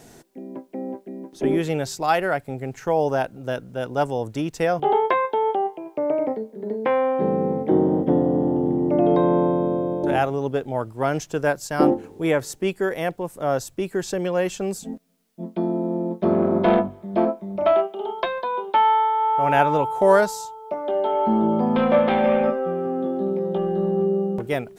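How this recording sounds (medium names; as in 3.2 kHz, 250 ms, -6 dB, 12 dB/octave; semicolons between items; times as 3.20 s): a quantiser's noise floor 12-bit, dither triangular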